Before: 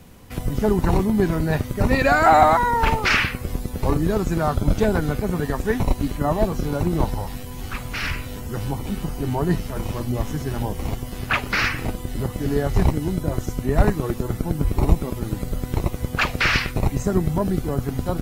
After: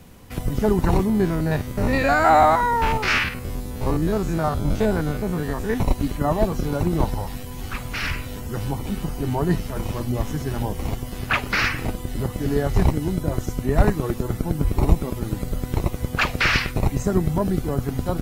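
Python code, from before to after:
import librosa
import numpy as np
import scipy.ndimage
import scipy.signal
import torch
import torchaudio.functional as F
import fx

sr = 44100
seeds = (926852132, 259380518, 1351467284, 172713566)

y = fx.spec_steps(x, sr, hold_ms=50, at=(1.08, 5.75), fade=0.02)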